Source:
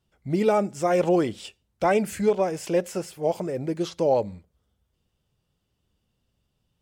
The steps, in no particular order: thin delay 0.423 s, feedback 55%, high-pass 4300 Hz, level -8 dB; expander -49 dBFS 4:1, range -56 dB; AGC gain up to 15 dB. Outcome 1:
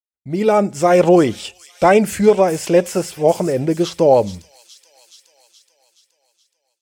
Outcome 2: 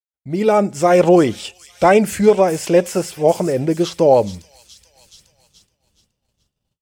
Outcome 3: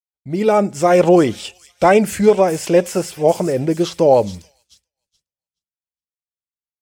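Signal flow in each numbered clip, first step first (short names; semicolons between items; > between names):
expander > thin delay > AGC; thin delay > AGC > expander; thin delay > expander > AGC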